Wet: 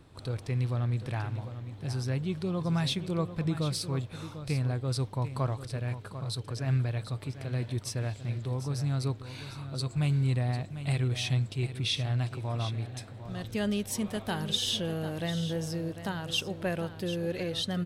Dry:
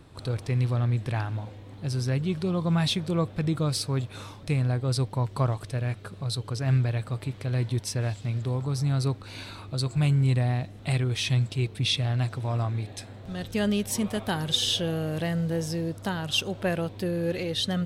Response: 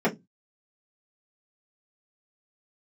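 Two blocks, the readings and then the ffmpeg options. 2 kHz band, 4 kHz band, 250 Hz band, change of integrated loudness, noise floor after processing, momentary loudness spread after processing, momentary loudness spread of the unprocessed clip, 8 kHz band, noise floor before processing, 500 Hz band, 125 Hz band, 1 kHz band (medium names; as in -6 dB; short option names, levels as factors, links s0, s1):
-4.0 dB, -4.0 dB, -4.0 dB, -4.5 dB, -46 dBFS, 8 LU, 8 LU, -4.0 dB, -45 dBFS, -4.0 dB, -4.0 dB, -4.0 dB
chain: -af "aecho=1:1:747:0.266,volume=0.596"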